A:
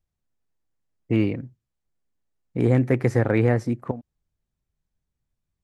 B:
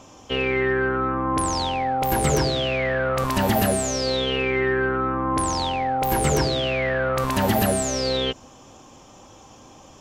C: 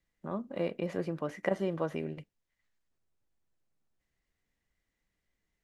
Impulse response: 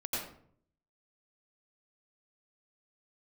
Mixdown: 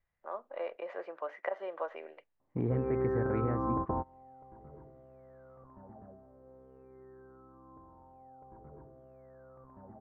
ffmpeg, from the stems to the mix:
-filter_complex "[0:a]lowshelf=frequency=460:gain=3.5,volume=-8.5dB,asplit=3[link_01][link_02][link_03];[link_01]atrim=end=0.76,asetpts=PTS-STARTPTS,afade=type=out:start_time=0.756:duration=0.004:curve=hsin[link_04];[link_02]atrim=start=0.76:end=1.78,asetpts=PTS-STARTPTS,volume=0[link_05];[link_03]atrim=start=1.78,asetpts=PTS-STARTPTS,afade=type=in:duration=0.004:curve=hsin[link_06];[link_04][link_05][link_06]concat=n=3:v=0:a=1,asplit=2[link_07][link_08];[1:a]lowpass=frequency=1200:width=0.5412,lowpass=frequency=1200:width=1.3066,adelay=2400,volume=-1.5dB[link_09];[2:a]highpass=frequency=560:width=0.5412,highpass=frequency=560:width=1.3066,volume=2dB[link_10];[link_08]apad=whole_len=547207[link_11];[link_09][link_11]sidechaingate=range=-30dB:threshold=-39dB:ratio=16:detection=peak[link_12];[link_07][link_12][link_10]amix=inputs=3:normalize=0,lowpass=1700,acompressor=threshold=-31dB:ratio=2.5"

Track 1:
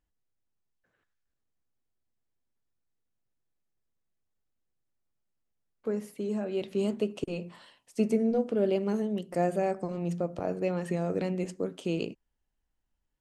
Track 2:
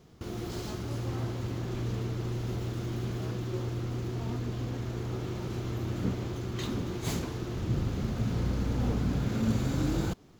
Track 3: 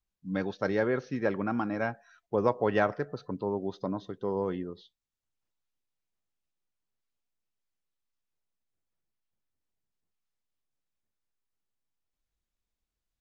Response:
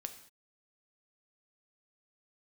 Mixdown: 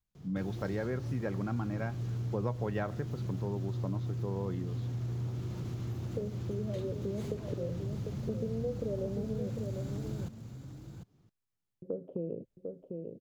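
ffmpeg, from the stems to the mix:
-filter_complex "[0:a]acompressor=threshold=-32dB:ratio=2.5,lowpass=frequency=540:width_type=q:width=4.9,adelay=300,volume=-6.5dB,asplit=3[link_01][link_02][link_03];[link_01]atrim=end=9.5,asetpts=PTS-STARTPTS,afade=type=out:start_time=9.496:duration=0.004:curve=hsin[link_04];[link_02]atrim=start=9.5:end=11.82,asetpts=PTS-STARTPTS,volume=0[link_05];[link_03]atrim=start=11.82,asetpts=PTS-STARTPTS,afade=type=in:duration=0.004:curve=hsin[link_06];[link_04][link_05][link_06]concat=n=3:v=0:a=1,asplit=2[link_07][link_08];[link_08]volume=-8dB[link_09];[1:a]acrossover=split=120|4200[link_10][link_11][link_12];[link_10]acompressor=threshold=-45dB:ratio=4[link_13];[link_11]acompressor=threshold=-39dB:ratio=4[link_14];[link_12]acompressor=threshold=-53dB:ratio=4[link_15];[link_13][link_14][link_15]amix=inputs=3:normalize=0,aeval=exprs='0.0211*(abs(mod(val(0)/0.0211+3,4)-2)-1)':channel_layout=same,adelay=150,volume=-3dB,asplit=2[link_16][link_17];[link_17]volume=-12dB[link_18];[2:a]volume=-3dB[link_19];[link_09][link_18]amix=inputs=2:normalize=0,aecho=0:1:748:1[link_20];[link_07][link_16][link_19][link_20]amix=inputs=4:normalize=0,equalizer=frequency=120:width_type=o:width=1.5:gain=12.5,acompressor=threshold=-36dB:ratio=2"

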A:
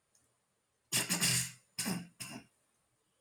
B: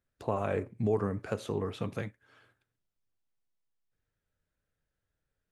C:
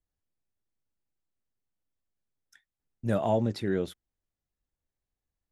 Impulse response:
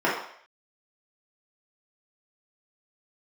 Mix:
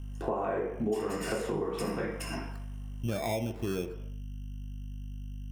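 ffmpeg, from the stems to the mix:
-filter_complex "[0:a]acompressor=threshold=-42dB:ratio=5,volume=3dB,asplit=2[link_01][link_02];[link_02]volume=-8dB[link_03];[1:a]volume=-4.5dB,asplit=2[link_04][link_05];[link_05]volume=-4dB[link_06];[2:a]lowpass=frequency=2200:width=0.5412,lowpass=frequency=2200:width=1.3066,aeval=exprs='val(0)+0.00631*(sin(2*PI*50*n/s)+sin(2*PI*2*50*n/s)/2+sin(2*PI*3*50*n/s)/3+sin(2*PI*4*50*n/s)/4+sin(2*PI*5*50*n/s)/5)':channel_layout=same,acrusher=samples=15:mix=1:aa=0.000001,volume=1dB,asplit=2[link_07][link_08];[link_08]volume=-23dB[link_09];[3:a]atrim=start_sample=2205[link_10];[link_03][link_06][link_09]amix=inputs=3:normalize=0[link_11];[link_11][link_10]afir=irnorm=-1:irlink=0[link_12];[link_01][link_04][link_07][link_12]amix=inputs=4:normalize=0,lowshelf=frequency=120:gain=6.5,acompressor=threshold=-30dB:ratio=4"

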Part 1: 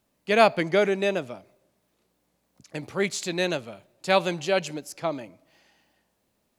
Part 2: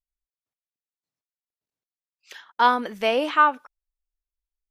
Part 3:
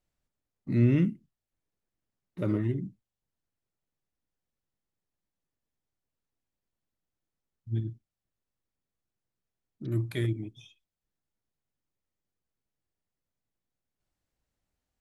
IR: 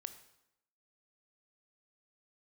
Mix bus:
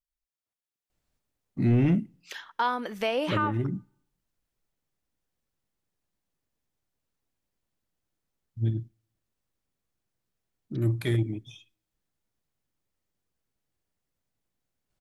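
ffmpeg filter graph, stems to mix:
-filter_complex "[1:a]acompressor=threshold=-32dB:ratio=1.5,volume=-3dB,asplit=2[link_01][link_02];[link_02]volume=-15.5dB[link_03];[2:a]asoftclip=type=tanh:threshold=-19dB,adelay=900,volume=-0.5dB,asplit=2[link_04][link_05];[link_05]volume=-19dB[link_06];[3:a]atrim=start_sample=2205[link_07];[link_03][link_06]amix=inputs=2:normalize=0[link_08];[link_08][link_07]afir=irnorm=-1:irlink=0[link_09];[link_01][link_04][link_09]amix=inputs=3:normalize=0,dynaudnorm=framelen=170:gausssize=9:maxgain=4.5dB,alimiter=limit=-16dB:level=0:latency=1:release=348"

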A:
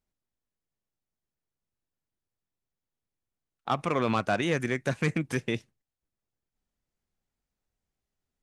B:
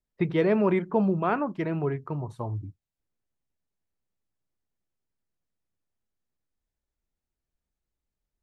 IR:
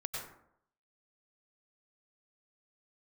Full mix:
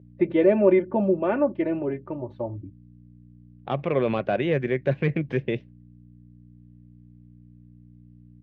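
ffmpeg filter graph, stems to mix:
-filter_complex "[0:a]aeval=exprs='val(0)+0.00501*(sin(2*PI*60*n/s)+sin(2*PI*2*60*n/s)/2+sin(2*PI*3*60*n/s)/3+sin(2*PI*4*60*n/s)/4+sin(2*PI*5*60*n/s)/5)':channel_layout=same,volume=0dB[link_01];[1:a]aecho=1:1:3.4:0.82,volume=-1.5dB[link_02];[link_01][link_02]amix=inputs=2:normalize=0,highpass=100,equalizer=frequency=140:width_type=q:width=4:gain=8,equalizer=frequency=390:width_type=q:width=4:gain=7,equalizer=frequency=560:width_type=q:width=4:gain=8,equalizer=frequency=940:width_type=q:width=4:gain=-4,equalizer=frequency=1300:width_type=q:width=4:gain=-8,lowpass=frequency=3200:width=0.5412,lowpass=frequency=3200:width=1.3066"

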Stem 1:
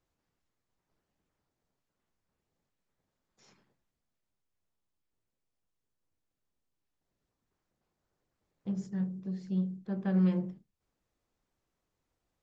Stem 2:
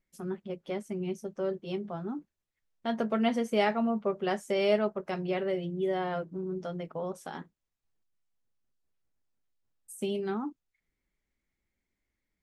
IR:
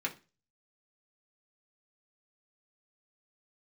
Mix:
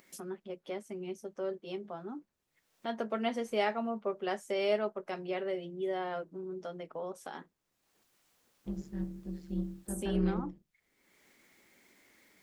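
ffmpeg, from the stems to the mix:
-filter_complex "[0:a]tremolo=f=150:d=0.824,volume=-0.5dB[link_01];[1:a]acompressor=mode=upward:threshold=-34dB:ratio=2.5,highpass=270,volume=-3.5dB[link_02];[link_01][link_02]amix=inputs=2:normalize=0"

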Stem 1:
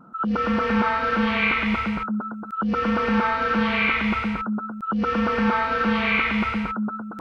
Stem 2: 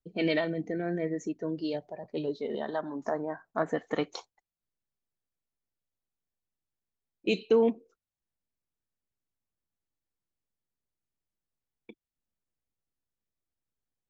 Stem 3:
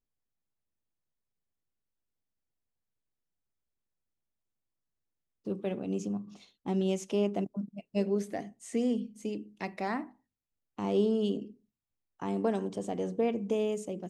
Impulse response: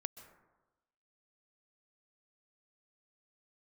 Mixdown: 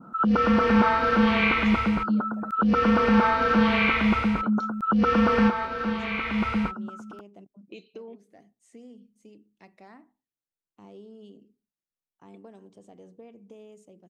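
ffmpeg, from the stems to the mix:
-filter_complex "[0:a]adynamicequalizer=threshold=0.0178:dfrequency=2100:dqfactor=0.81:tfrequency=2100:tqfactor=0.81:attack=5:release=100:ratio=0.375:range=2.5:mode=cutabove:tftype=bell,volume=2.5dB[link_01];[1:a]highpass=150,adelay=450,volume=-6.5dB[link_02];[2:a]volume=-15.5dB,asplit=2[link_03][link_04];[link_04]apad=whole_len=317887[link_05];[link_01][link_05]sidechaincompress=threshold=-52dB:ratio=10:attack=39:release=931[link_06];[link_02][link_03]amix=inputs=2:normalize=0,acompressor=threshold=-44dB:ratio=3,volume=0dB[link_07];[link_06][link_07]amix=inputs=2:normalize=0"

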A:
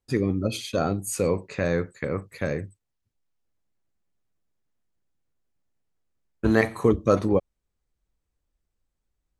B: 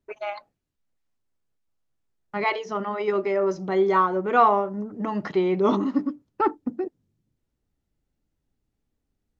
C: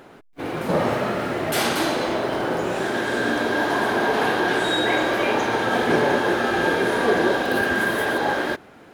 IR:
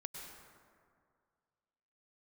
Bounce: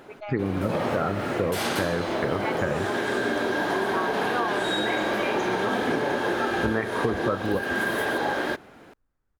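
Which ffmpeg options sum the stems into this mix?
-filter_complex "[0:a]lowpass=frequency=1500:width_type=q:width=2.1,adelay=200,volume=2.5dB[link_01];[1:a]volume=-6.5dB[link_02];[2:a]volume=-2dB[link_03];[link_01][link_02][link_03]amix=inputs=3:normalize=0,acompressor=threshold=-21dB:ratio=10"

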